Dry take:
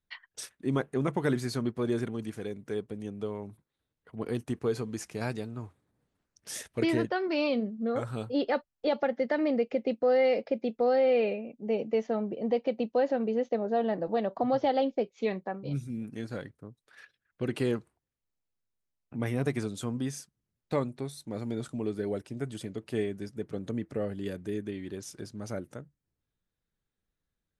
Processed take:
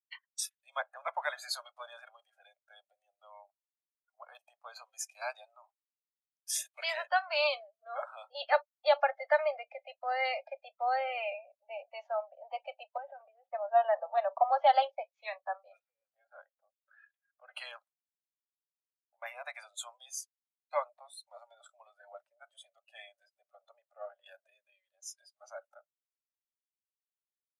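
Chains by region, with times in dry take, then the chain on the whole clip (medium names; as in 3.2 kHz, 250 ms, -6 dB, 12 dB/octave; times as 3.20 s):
12.97–13.53 s: brick-wall FIR band-pass 230–3800 Hz + compression 5:1, threshold -33 dBFS
15.79–17.53 s: upward compressor, threshold -38 dBFS + distance through air 310 m
whole clip: steep high-pass 590 Hz 96 dB/octave; spectral noise reduction 20 dB; three bands expanded up and down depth 70%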